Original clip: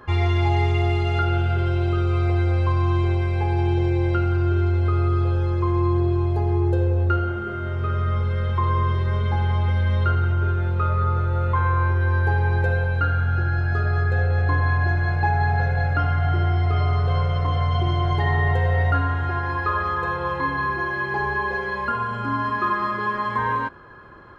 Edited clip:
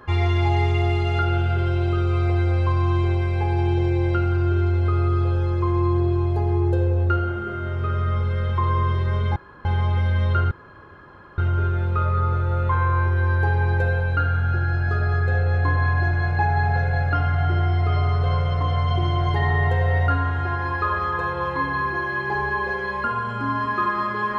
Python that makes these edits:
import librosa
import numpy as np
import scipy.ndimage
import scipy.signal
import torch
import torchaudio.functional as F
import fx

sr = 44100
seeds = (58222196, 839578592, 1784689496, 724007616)

y = fx.edit(x, sr, fx.insert_room_tone(at_s=9.36, length_s=0.29),
    fx.insert_room_tone(at_s=10.22, length_s=0.87), tone=tone)